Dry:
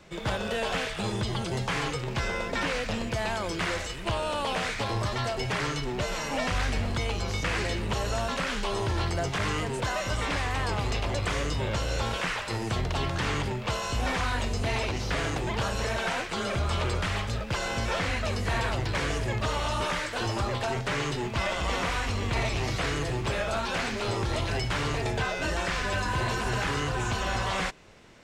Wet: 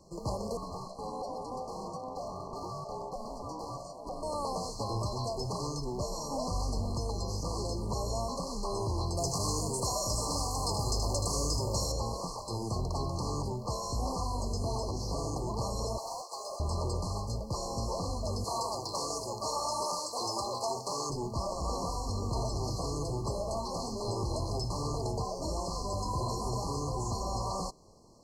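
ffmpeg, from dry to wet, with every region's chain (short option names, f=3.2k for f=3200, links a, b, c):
-filter_complex "[0:a]asettb=1/sr,asplit=3[a][b][c];[a]atrim=end=0.574[d];[b]atrim=start=0.57:end=4.23,asetpts=PTS-STARTPTS,afade=t=in:d=0.004:c=qsin,afade=t=out:st=3.656:d=0.004:c=qsin,highshelf=f=2.8k:g=-9.5,asoftclip=type=hard:threshold=-27dB,aeval=exprs='val(0)*sin(2*PI*640*n/s)':c=same[e];[c]atrim=start=4.226[f];[d][e]acrossfade=d=0.004:c1=hsin:c2=qsin[g];[g][f]acrossfade=d=0.004:c1=qsin:c2=hsin,asettb=1/sr,asplit=3[h][i][j];[h]atrim=end=9.174[k];[i]atrim=start=9.17:end=11.92,asetpts=PTS-STARTPTS,afade=t=in:d=0.004:c=qsin,afade=t=out:st=2.746:d=0.004:c=qsin,highshelf=f=4.2k:g=12,aecho=1:1:77:0.447,atrim=end_sample=121275[l];[j]atrim=start=11.916[m];[k][l]acrossfade=d=0.004:c1=hsin:c2=qsin[n];[n][m]acrossfade=d=0.004:c1=qsin:c2=hsin,asettb=1/sr,asplit=3[o][p][q];[o]atrim=end=15.984[r];[p]atrim=start=15.98:end=16.6,asetpts=PTS-STARTPTS,afade=t=in:d=0.004:c=qsin,afade=t=out:st=0.616:d=0.004:c=qsin,highpass=f=570:w=0.5412,highpass=f=570:w=1.3066,asoftclip=type=hard:threshold=-28dB[s];[q]atrim=start=16.596[t];[r][s]acrossfade=d=0.004:c1=hsin:c2=qsin[u];[u][t]acrossfade=d=0.004:c1=qsin:c2=hsin,asettb=1/sr,asplit=3[v][w][x];[v]atrim=end=18.444[y];[w]atrim=start=18.44:end=21.1,asetpts=PTS-STARTPTS,afade=t=in:d=0.004:c=qsin,afade=t=out:st=2.656:d=0.004:c=qsin,highpass=f=940:p=1,acontrast=52[z];[x]atrim=start=21.096[aa];[y][z]acrossfade=d=0.004:c1=hsin:c2=qsin[ab];[ab][aa]acrossfade=d=0.004:c1=qsin:c2=hsin,afftfilt=real='re*(1-between(b*sr/4096,1200,4100))':imag='im*(1-between(b*sr/4096,1200,4100))':win_size=4096:overlap=0.75,equalizer=f=8.9k:w=0.32:g=2,volume=-4dB"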